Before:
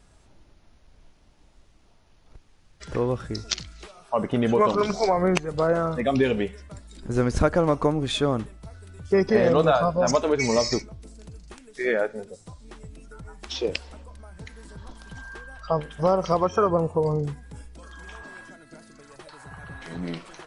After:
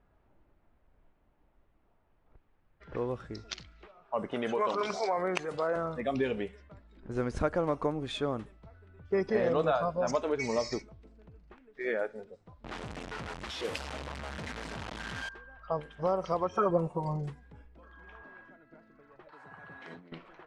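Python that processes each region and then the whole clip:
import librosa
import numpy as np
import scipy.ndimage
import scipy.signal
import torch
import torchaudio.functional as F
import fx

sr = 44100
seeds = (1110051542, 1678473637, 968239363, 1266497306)

y = fx.chain(x, sr, fx.highpass(hz=570.0, slope=6),
    fx.env_flatten(amount_pct=50), at=(4.32, 5.76))
y = fx.chain(y, sr, fx.delta_mod(bps=64000, step_db=-21.5),
    fx.highpass(hz=72.0, slope=12),
    fx.peak_eq(hz=380.0, db=-4.5, octaves=0.44), at=(12.64, 15.29))
y = fx.chain(y, sr, fx.peak_eq(hz=400.0, db=-3.0, octaves=0.21),
    fx.comb(ms=5.4, depth=0.99), at=(16.55, 17.3))
y = fx.chain(y, sr, fx.highpass(hz=180.0, slope=12),
    fx.bass_treble(bass_db=1, treble_db=10),
    fx.over_compress(threshold_db=-37.0, ratio=-0.5), at=(19.32, 20.12))
y = fx.env_lowpass(y, sr, base_hz=1700.0, full_db=-21.0)
y = fx.bass_treble(y, sr, bass_db=-4, treble_db=-7)
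y = F.gain(torch.from_numpy(y), -8.0).numpy()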